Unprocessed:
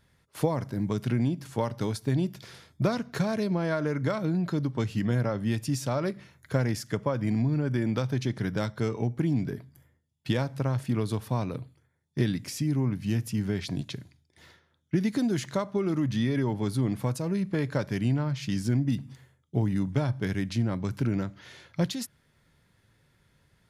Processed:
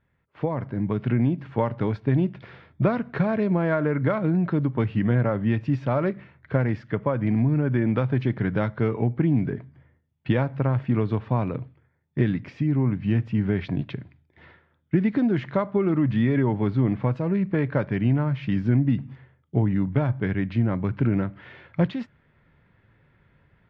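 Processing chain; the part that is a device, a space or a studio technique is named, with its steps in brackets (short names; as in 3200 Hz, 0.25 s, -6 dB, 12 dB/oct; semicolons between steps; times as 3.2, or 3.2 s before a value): action camera in a waterproof case (LPF 2600 Hz 24 dB/oct; AGC gain up to 10.5 dB; gain -5 dB; AAC 64 kbps 32000 Hz)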